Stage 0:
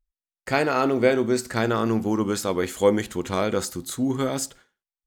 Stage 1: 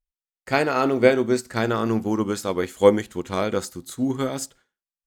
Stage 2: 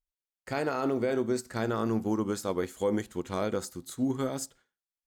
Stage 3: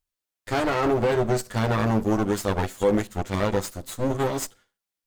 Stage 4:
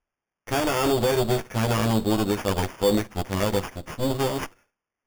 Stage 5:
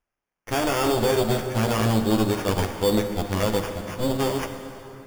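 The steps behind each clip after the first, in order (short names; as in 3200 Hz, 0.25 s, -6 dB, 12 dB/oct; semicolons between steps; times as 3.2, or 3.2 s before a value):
upward expander 1.5:1, over -38 dBFS; gain +4.5 dB
limiter -13.5 dBFS, peak gain reduction 11.5 dB; dynamic EQ 2600 Hz, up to -5 dB, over -42 dBFS, Q 1; gain -5 dB
minimum comb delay 9.9 ms; gain +7.5 dB
sample-and-hold 11×
plate-style reverb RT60 3.3 s, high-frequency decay 0.7×, DRR 6.5 dB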